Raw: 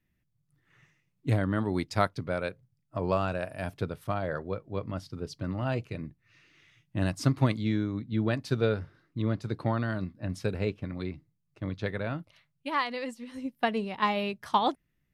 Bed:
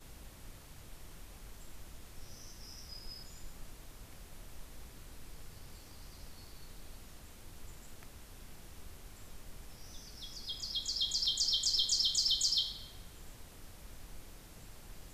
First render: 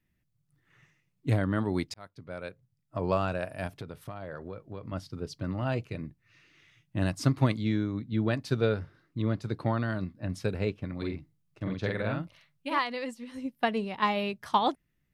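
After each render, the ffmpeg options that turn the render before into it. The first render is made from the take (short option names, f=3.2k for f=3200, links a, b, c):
-filter_complex "[0:a]asettb=1/sr,asplit=3[a][b][c];[a]atrim=end=3.674[d];[b]atrim=start=3.67:end=4.92,asetpts=PTS-STARTPTS,afade=t=in:d=0.004:c=qsin,afade=t=out:st=1.246:d=0.004:c=qsin,acompressor=threshold=-35dB:ratio=6:attack=3.2:release=140:knee=1:detection=peak[e];[c]atrim=start=4.916[f];[d][e]acrossfade=d=0.004:c1=hsin:c2=qsin[g];[g][f]acrossfade=d=0.004:c1=qsin:c2=hsin,asettb=1/sr,asplit=3[h][i][j];[h]atrim=end=10.974[k];[i]atrim=start=10.97:end=12.79,asetpts=PTS-STARTPTS,afade=t=in:d=0.004:c=qsin,afade=t=out:st=1.816:d=0.004:c=qsin,asplit=2[l][m];[m]adelay=47,volume=-2dB[n];[l][n]amix=inputs=2:normalize=0,atrim=end_sample=80262[o];[j]atrim=start=12.786[p];[k][o]acrossfade=d=0.004:c1=hsin:c2=qsin[q];[q][p]acrossfade=d=0.004:c1=qsin:c2=hsin,asplit=2[r][s];[r]atrim=end=1.94,asetpts=PTS-STARTPTS,afade=t=out:st=1.936:d=0.004:c=hsin[t];[s]atrim=start=1.94,asetpts=PTS-STARTPTS,afade=t=in:d=1.1[u];[t][u]concat=n=2:v=0:a=1"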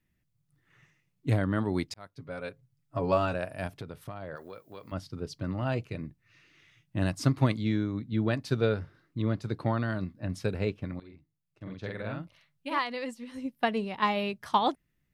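-filter_complex "[0:a]asettb=1/sr,asplit=3[a][b][c];[a]atrim=end=2.124[d];[b]atrim=start=2.12:end=3.35,asetpts=PTS-STARTPTS,afade=t=in:d=0.004:c=qsin,afade=t=out:st=1.226:d=0.004:c=qsin,aecho=1:1:7.2:0.65,atrim=end_sample=54243[e];[c]atrim=start=3.346[f];[d][e]acrossfade=d=0.004:c1=hsin:c2=qsin[g];[g][f]acrossfade=d=0.004:c1=qsin:c2=hsin,asplit=3[h][i][j];[h]afade=t=out:st=4.35:d=0.02[k];[i]aemphasis=mode=production:type=riaa,afade=t=in:st=4.35:d=0.02,afade=t=out:st=4.91:d=0.02[l];[j]afade=t=in:st=4.91:d=0.02[m];[k][l][m]amix=inputs=3:normalize=0,asplit=2[n][o];[n]atrim=end=11,asetpts=PTS-STARTPTS,afade=t=out:st=10.996:d=0.004:c=hsin:silence=0.1[p];[o]atrim=start=11,asetpts=PTS-STARTPTS,afade=t=in:d=2.1:silence=0.1[q];[p][q]concat=n=2:v=0:a=1"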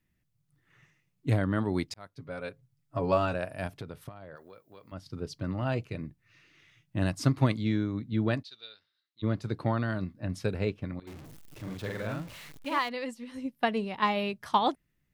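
-filter_complex "[0:a]asplit=3[a][b][c];[a]afade=t=out:st=8.42:d=0.02[d];[b]bandpass=f=3.9k:t=q:w=4.8,afade=t=in:st=8.42:d=0.02,afade=t=out:st=9.22:d=0.02[e];[c]afade=t=in:st=9.22:d=0.02[f];[d][e][f]amix=inputs=3:normalize=0,asettb=1/sr,asplit=3[g][h][i];[g]atrim=end=11.074[j];[h]atrim=start=11.07:end=12.89,asetpts=PTS-STARTPTS,afade=t=in:d=0.004:c=qsin,afade=t=out:st=1.816:d=0.004:c=qsin,aeval=exprs='val(0)+0.5*0.00794*sgn(val(0))':c=same[k];[i]atrim=start=12.886[l];[j][k]acrossfade=d=0.004:c1=hsin:c2=qsin[m];[m][l]acrossfade=d=0.004:c1=qsin:c2=hsin,asplit=3[n][o][p];[n]atrim=end=4.092[q];[o]atrim=start=4.088:end=5.062,asetpts=PTS-STARTPTS,volume=-6.5dB[r];[p]atrim=start=5.058[s];[q][r]acrossfade=d=0.004:c1=hsin:c2=hsin[t];[t][s]acrossfade=d=0.004:c1=hsin:c2=hsin"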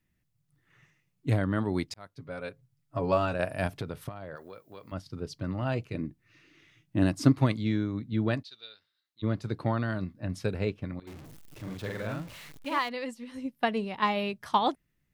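-filter_complex "[0:a]asettb=1/sr,asplit=3[a][b][c];[a]atrim=end=3.394[d];[b]atrim=start=3.39:end=5.02,asetpts=PTS-STARTPTS,afade=t=in:d=0.004:c=qsin,afade=t=out:st=1.626:d=0.004:c=qsin,acontrast=27[e];[c]atrim=start=5.016[f];[d][e]acrossfade=d=0.004:c1=hsin:c2=qsin[g];[g][f]acrossfade=d=0.004:c1=qsin:c2=hsin,asettb=1/sr,asplit=3[h][i][j];[h]atrim=end=5.944[k];[i]atrim=start=5.94:end=7.32,asetpts=PTS-STARTPTS,afade=t=in:d=0.004:c=qsin,afade=t=out:st=1.376:d=0.004:c=qsin,equalizer=f=300:w=1.6:g=9[l];[j]atrim=start=7.316[m];[k][l]acrossfade=d=0.004:c1=hsin:c2=qsin[n];[n][m]acrossfade=d=0.004:c1=qsin:c2=hsin"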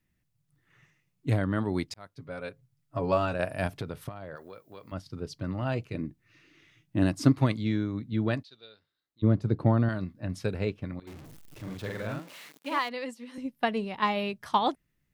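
-filter_complex "[0:a]asettb=1/sr,asplit=3[a][b][c];[a]atrim=end=8.454[d];[b]atrim=start=8.45:end=9.89,asetpts=PTS-STARTPTS,afade=t=in:d=0.004:c=qsin,afade=t=out:st=1.436:d=0.004:c=qsin,tiltshelf=f=970:g=7[e];[c]atrim=start=9.886[f];[d][e]acrossfade=d=0.004:c1=hsin:c2=qsin[g];[g][f]acrossfade=d=0.004:c1=qsin:c2=hsin,asettb=1/sr,asplit=3[h][i][j];[h]atrim=end=12.194[k];[i]atrim=start=12.19:end=13.38,asetpts=PTS-STARTPTS,afade=t=in:d=0.004:c=qsin,afade=t=out:st=1.186:d=0.004:c=qsin,highpass=f=220:w=0.5412,highpass=f=220:w=1.3066[l];[j]atrim=start=13.376[m];[k][l]acrossfade=d=0.004:c1=hsin:c2=qsin[n];[n][m]acrossfade=d=0.004:c1=qsin:c2=hsin"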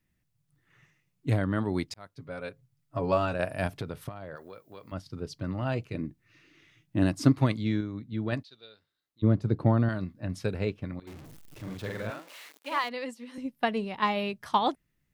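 -filter_complex "[0:a]asettb=1/sr,asplit=3[a][b][c];[a]atrim=end=12.104[d];[b]atrim=start=12.1:end=12.84,asetpts=PTS-STARTPTS,afade=t=in:d=0.004:c=qsin,afade=t=out:st=0.736:d=0.004:c=qsin,highpass=420[e];[c]atrim=start=12.836[f];[d][e]acrossfade=d=0.004:c1=hsin:c2=qsin[g];[g][f]acrossfade=d=0.004:c1=qsin:c2=hsin,asplit=3[h][i][j];[h]atrim=end=7.812[k];[i]atrim=start=7.808:end=8.322,asetpts=PTS-STARTPTS,volume=-4dB[l];[j]atrim=start=8.318[m];[k][l]acrossfade=d=0.004:c1=hsin:c2=hsin[n];[n][m]acrossfade=d=0.004:c1=hsin:c2=hsin"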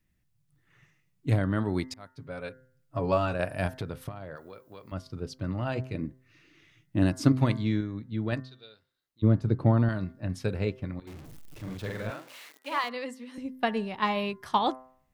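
-af "lowshelf=f=72:g=6,bandreject=f=129.1:t=h:w=4,bandreject=f=258.2:t=h:w=4,bandreject=f=387.3:t=h:w=4,bandreject=f=516.4:t=h:w=4,bandreject=f=645.5:t=h:w=4,bandreject=f=774.6:t=h:w=4,bandreject=f=903.7:t=h:w=4,bandreject=f=1.0328k:t=h:w=4,bandreject=f=1.1619k:t=h:w=4,bandreject=f=1.291k:t=h:w=4,bandreject=f=1.4201k:t=h:w=4,bandreject=f=1.5492k:t=h:w=4,bandreject=f=1.6783k:t=h:w=4,bandreject=f=1.8074k:t=h:w=4,bandreject=f=1.9365k:t=h:w=4,bandreject=f=2.0656k:t=h:w=4"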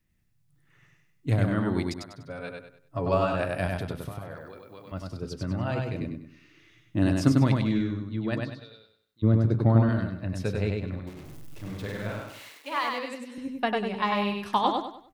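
-af "aecho=1:1:98|196|294|392:0.708|0.241|0.0818|0.0278"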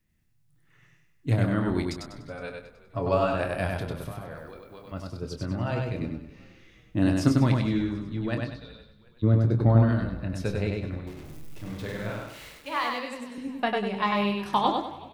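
-filter_complex "[0:a]asplit=2[a][b];[b]adelay=25,volume=-9dB[c];[a][c]amix=inputs=2:normalize=0,asplit=4[d][e][f][g];[e]adelay=370,afreqshift=-58,volume=-21dB[h];[f]adelay=740,afreqshift=-116,volume=-28.5dB[i];[g]adelay=1110,afreqshift=-174,volume=-36.1dB[j];[d][h][i][j]amix=inputs=4:normalize=0"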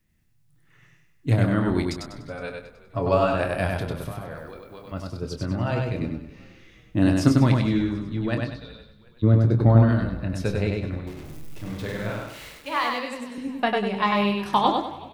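-af "volume=3.5dB"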